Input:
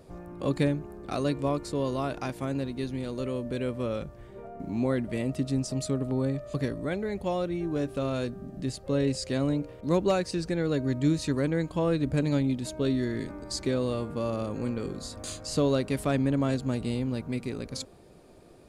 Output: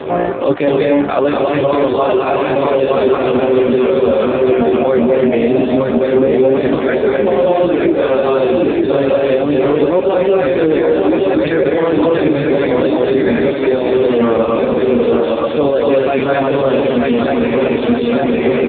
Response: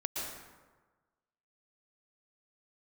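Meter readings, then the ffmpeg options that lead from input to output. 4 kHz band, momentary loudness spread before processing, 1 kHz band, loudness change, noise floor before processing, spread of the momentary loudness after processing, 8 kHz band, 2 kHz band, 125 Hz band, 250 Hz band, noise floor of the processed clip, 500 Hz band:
+11.5 dB, 9 LU, +19.0 dB, +16.5 dB, −50 dBFS, 2 LU, below −40 dB, +18.0 dB, +5.0 dB, +14.0 dB, −17 dBFS, +20.5 dB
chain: -filter_complex "[0:a]highpass=370,asplit=2[link_01][link_02];[link_02]adelay=13,volume=-7dB[link_03];[link_01][link_03]amix=inputs=2:normalize=0,aecho=1:1:919|1838|2757|3676|4595:0.596|0.238|0.0953|0.0381|0.0152[link_04];[1:a]atrim=start_sample=2205,afade=type=out:start_time=0.22:duration=0.01,atrim=end_sample=10143,asetrate=26019,aresample=44100[link_05];[link_04][link_05]afir=irnorm=-1:irlink=0,areverse,acompressor=threshold=-38dB:ratio=10,areverse,alimiter=level_in=36dB:limit=-1dB:release=50:level=0:latency=1,volume=-1.5dB" -ar 8000 -c:a libopencore_amrnb -b:a 5150

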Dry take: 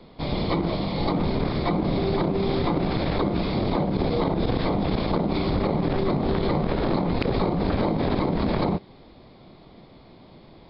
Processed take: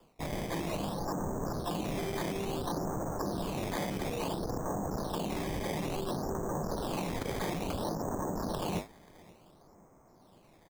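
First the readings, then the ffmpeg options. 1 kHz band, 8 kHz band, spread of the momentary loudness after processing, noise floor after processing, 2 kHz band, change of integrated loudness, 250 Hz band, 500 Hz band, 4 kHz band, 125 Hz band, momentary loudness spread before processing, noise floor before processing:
−8.0 dB, can't be measured, 1 LU, −61 dBFS, −8.0 dB, −10.5 dB, −12.0 dB, −10.0 dB, −9.0 dB, −12.0 dB, 1 LU, −50 dBFS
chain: -filter_complex "[0:a]lowpass=frequency=1600:width=0.5412,lowpass=frequency=1600:width=1.3066,acrossover=split=200|590[link_01][link_02][link_03];[link_03]acontrast=80[link_04];[link_01][link_02][link_04]amix=inputs=3:normalize=0,afwtdn=0.0562,flanger=delay=5.9:depth=5.3:regen=-75:speed=2:shape=sinusoidal,areverse,acompressor=threshold=-40dB:ratio=6,areverse,aecho=1:1:533|1066|1599:0.0631|0.0278|0.0122,acrusher=samples=11:mix=1:aa=0.000001:lfo=1:lforange=11:lforate=0.58,volume=7dB"

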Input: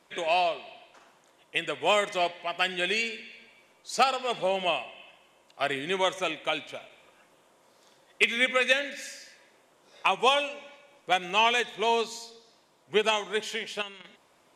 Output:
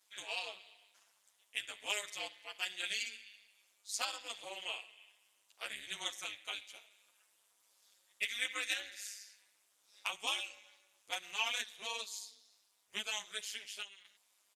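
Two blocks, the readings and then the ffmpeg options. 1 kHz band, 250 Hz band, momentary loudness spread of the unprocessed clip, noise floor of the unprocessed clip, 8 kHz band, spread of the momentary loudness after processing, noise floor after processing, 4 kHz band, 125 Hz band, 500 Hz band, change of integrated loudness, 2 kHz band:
−20.0 dB, −23.5 dB, 17 LU, −63 dBFS, −2.5 dB, 16 LU, −75 dBFS, −9.0 dB, below −20 dB, −24.5 dB, −12.5 dB, −12.0 dB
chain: -filter_complex "[0:a]aderivative,tremolo=f=210:d=0.947,asplit=2[link_01][link_02];[link_02]adelay=9.7,afreqshift=-0.95[link_03];[link_01][link_03]amix=inputs=2:normalize=1,volume=5dB"

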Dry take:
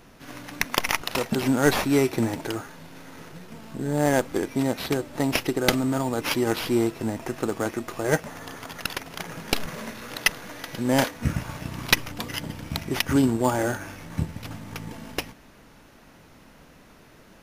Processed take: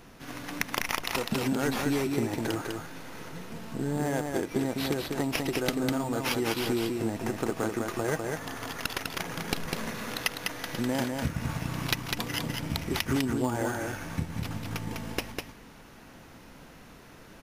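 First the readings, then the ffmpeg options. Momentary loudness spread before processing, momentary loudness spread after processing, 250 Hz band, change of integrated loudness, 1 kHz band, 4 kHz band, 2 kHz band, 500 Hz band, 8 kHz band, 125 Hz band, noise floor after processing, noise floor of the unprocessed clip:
16 LU, 15 LU, −4.5 dB, −5.0 dB, −4.5 dB, −4.0 dB, −5.0 dB, −5.5 dB, −4.5 dB, −3.5 dB, −51 dBFS, −52 dBFS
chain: -filter_complex "[0:a]bandreject=frequency=600:width=20,acompressor=threshold=-26dB:ratio=6,asplit=2[link_01][link_02];[link_02]aecho=0:1:201:0.631[link_03];[link_01][link_03]amix=inputs=2:normalize=0"

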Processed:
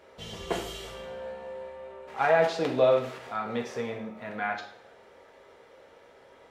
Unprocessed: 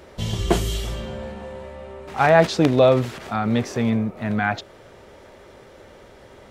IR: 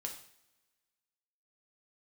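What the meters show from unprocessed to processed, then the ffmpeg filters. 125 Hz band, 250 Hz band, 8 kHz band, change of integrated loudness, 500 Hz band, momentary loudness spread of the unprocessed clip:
−18.0 dB, −14.5 dB, below −10 dB, −8.5 dB, −6.0 dB, 19 LU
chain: -filter_complex "[0:a]bass=frequency=250:gain=-14,treble=frequency=4000:gain=-6[link_01];[1:a]atrim=start_sample=2205[link_02];[link_01][link_02]afir=irnorm=-1:irlink=0,volume=-5dB"

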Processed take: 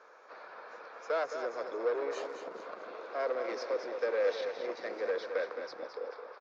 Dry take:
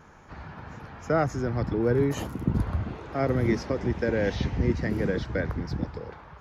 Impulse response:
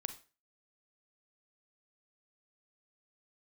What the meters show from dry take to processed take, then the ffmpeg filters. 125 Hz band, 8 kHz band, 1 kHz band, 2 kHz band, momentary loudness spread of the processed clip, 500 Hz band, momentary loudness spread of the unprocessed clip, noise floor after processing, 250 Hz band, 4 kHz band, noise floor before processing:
below −40 dB, can't be measured, −5.0 dB, −6.0 dB, 16 LU, −4.0 dB, 17 LU, −56 dBFS, −21.0 dB, −5.0 dB, −49 dBFS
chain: -af "asoftclip=type=tanh:threshold=-24.5dB,highpass=frequency=490:width=0.5412,highpass=frequency=490:width=1.3066,equalizer=frequency=500:width_type=q:width=4:gain=6,equalizer=frequency=850:width_type=q:width=4:gain=-8,equalizer=frequency=1900:width_type=q:width=4:gain=-6,equalizer=frequency=3000:width_type=q:width=4:gain=-10,lowpass=frequency=5100:width=0.5412,lowpass=frequency=5100:width=1.3066,aecho=1:1:216|432|648|864|1080:0.398|0.159|0.0637|0.0255|0.0102"

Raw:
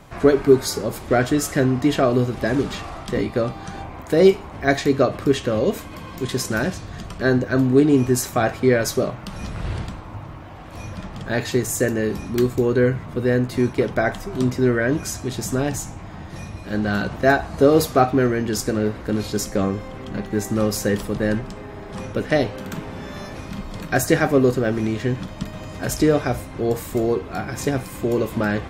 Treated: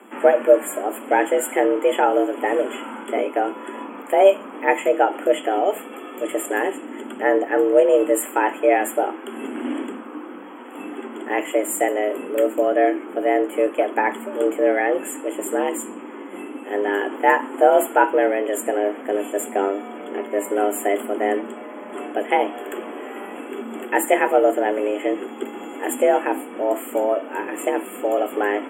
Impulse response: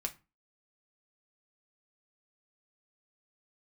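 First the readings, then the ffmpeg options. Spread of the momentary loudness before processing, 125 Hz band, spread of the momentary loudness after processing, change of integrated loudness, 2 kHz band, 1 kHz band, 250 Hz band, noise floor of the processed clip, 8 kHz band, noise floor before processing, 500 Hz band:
17 LU, below −30 dB, 16 LU, 0.0 dB, +0.5 dB, +6.0 dB, −4.5 dB, −37 dBFS, −2.0 dB, −37 dBFS, +2.0 dB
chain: -af "afreqshift=200,afftfilt=real='re*(1-between(b*sr/4096,3400,7000))':imag='im*(1-between(b*sr/4096,3400,7000))':win_size=4096:overlap=0.75"

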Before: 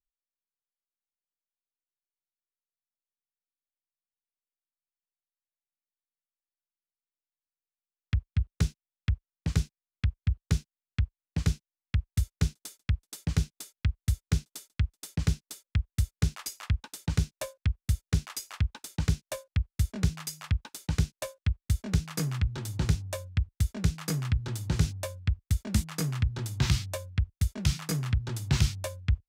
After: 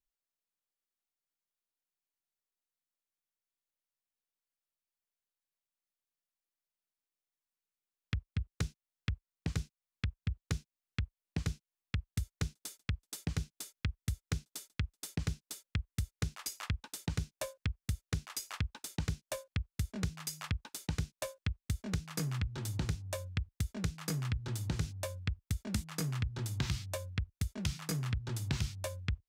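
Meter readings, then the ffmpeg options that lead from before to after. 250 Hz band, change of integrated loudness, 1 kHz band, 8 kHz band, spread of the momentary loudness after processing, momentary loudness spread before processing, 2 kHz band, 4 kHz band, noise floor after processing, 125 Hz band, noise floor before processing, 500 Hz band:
−6.5 dB, −7.5 dB, −4.0 dB, −4.5 dB, 5 LU, 4 LU, −3.5 dB, −5.0 dB, below −85 dBFS, −8.0 dB, below −85 dBFS, −4.0 dB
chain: -af "acompressor=threshold=-34dB:ratio=3"

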